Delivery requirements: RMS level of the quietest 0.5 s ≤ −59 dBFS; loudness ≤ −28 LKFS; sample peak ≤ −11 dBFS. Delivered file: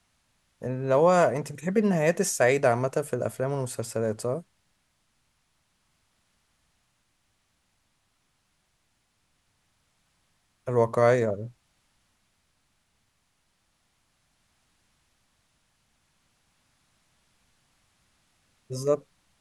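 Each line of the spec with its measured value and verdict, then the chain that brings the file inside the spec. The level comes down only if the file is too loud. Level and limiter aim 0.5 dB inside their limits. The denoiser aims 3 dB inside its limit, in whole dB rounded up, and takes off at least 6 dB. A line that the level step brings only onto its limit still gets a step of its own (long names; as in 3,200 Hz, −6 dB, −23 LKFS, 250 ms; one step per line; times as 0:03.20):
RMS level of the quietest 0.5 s −72 dBFS: in spec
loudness −25.5 LKFS: out of spec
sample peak −7.5 dBFS: out of spec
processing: level −3 dB
brickwall limiter −11.5 dBFS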